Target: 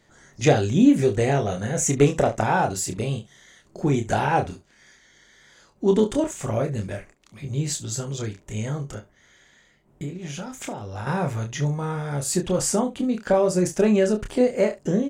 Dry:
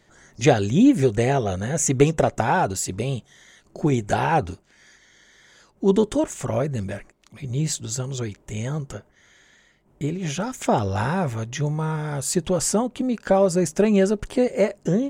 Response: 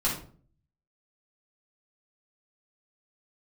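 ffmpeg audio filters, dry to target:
-filter_complex "[0:a]asettb=1/sr,asplit=3[link_01][link_02][link_03];[link_01]atrim=end=10.034[link_04];[link_02]atrim=start=10.03:end=11.07,asetpts=PTS-STARTPTS,afade=type=in:duration=0.004:curve=qsin,afade=type=out:start_time=1.036:duration=0.004:curve=qsin,acompressor=threshold=-29dB:ratio=10[link_05];[link_03]atrim=start=11.066[link_06];[link_04][link_05]acrossfade=duration=0.004:curve1=hsin:curve2=qsin[link_07];[link_07][link_06]acrossfade=duration=0.004:curve1=qsin:curve2=hsin,aecho=1:1:28|70:0.531|0.15,volume=-2dB"

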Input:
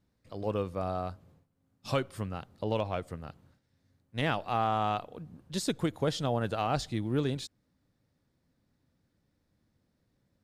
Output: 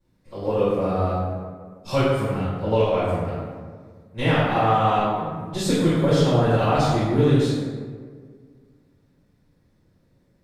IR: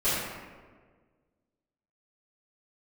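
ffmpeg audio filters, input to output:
-filter_complex "[1:a]atrim=start_sample=2205,asetrate=37485,aresample=44100[link_01];[0:a][link_01]afir=irnorm=-1:irlink=0,volume=-3.5dB"

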